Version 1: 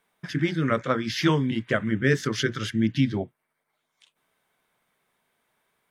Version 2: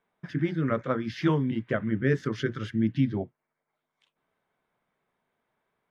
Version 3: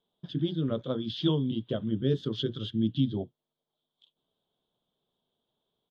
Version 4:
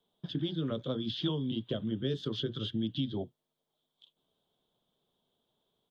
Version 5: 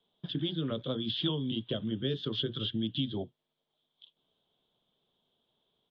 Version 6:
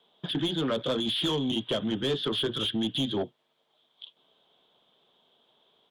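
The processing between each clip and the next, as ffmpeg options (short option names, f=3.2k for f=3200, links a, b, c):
-af "lowpass=f=1.2k:p=1,volume=-2dB"
-af "firequalizer=gain_entry='entry(430,0);entry(2100,-22);entry(3300,14);entry(5500,-7)':delay=0.05:min_phase=1,volume=-2dB"
-filter_complex "[0:a]acrossover=split=240|560|2400[a][b][c][d];[a]acompressor=threshold=-39dB:ratio=4[e];[b]acompressor=threshold=-40dB:ratio=4[f];[c]acompressor=threshold=-45dB:ratio=4[g];[d]acompressor=threshold=-42dB:ratio=4[h];[e][f][g][h]amix=inputs=4:normalize=0,volume=2.5dB"
-af "lowpass=f=3.3k:t=q:w=1.7"
-filter_complex "[0:a]asplit=2[a][b];[b]highpass=f=720:p=1,volume=22dB,asoftclip=type=tanh:threshold=-17.5dB[c];[a][c]amix=inputs=2:normalize=0,lowpass=f=2.3k:p=1,volume=-6dB"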